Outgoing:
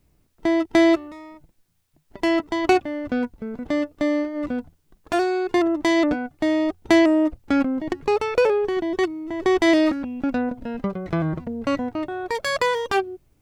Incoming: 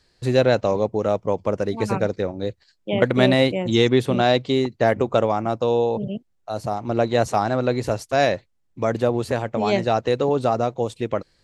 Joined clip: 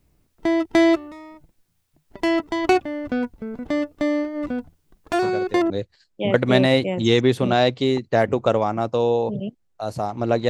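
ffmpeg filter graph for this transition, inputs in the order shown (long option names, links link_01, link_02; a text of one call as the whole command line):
ffmpeg -i cue0.wav -i cue1.wav -filter_complex "[1:a]asplit=2[link_01][link_02];[0:a]apad=whole_dur=10.49,atrim=end=10.49,atrim=end=5.702[link_03];[link_02]atrim=start=2.378:end=7.17[link_04];[link_01]atrim=start=1.9:end=2.38,asetpts=PTS-STARTPTS,volume=-10dB,afade=type=in:duration=0.004:curve=hsin,afade=type=out:start_time=0.476:duration=0.004:curve=hsin,adelay=5220[link_05];[link_03][link_04]acrossfade=duration=0.004:curve1=hsin:curve2=hsin[link_06];[link_06][link_05]amix=inputs=2:normalize=0" out.wav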